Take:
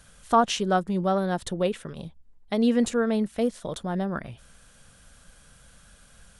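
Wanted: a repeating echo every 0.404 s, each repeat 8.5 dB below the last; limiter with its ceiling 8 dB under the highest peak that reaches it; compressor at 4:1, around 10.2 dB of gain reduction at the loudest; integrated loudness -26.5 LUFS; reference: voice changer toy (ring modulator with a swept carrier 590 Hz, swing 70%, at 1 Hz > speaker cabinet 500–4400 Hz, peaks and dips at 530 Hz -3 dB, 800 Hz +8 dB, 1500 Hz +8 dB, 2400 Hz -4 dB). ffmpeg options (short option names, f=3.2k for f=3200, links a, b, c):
-af "acompressor=threshold=-27dB:ratio=4,alimiter=limit=-24dB:level=0:latency=1,aecho=1:1:404|808|1212|1616:0.376|0.143|0.0543|0.0206,aeval=exprs='val(0)*sin(2*PI*590*n/s+590*0.7/1*sin(2*PI*1*n/s))':c=same,highpass=500,equalizer=f=530:t=q:w=4:g=-3,equalizer=f=800:t=q:w=4:g=8,equalizer=f=1.5k:t=q:w=4:g=8,equalizer=f=2.4k:t=q:w=4:g=-4,lowpass=f=4.4k:w=0.5412,lowpass=f=4.4k:w=1.3066,volume=7dB"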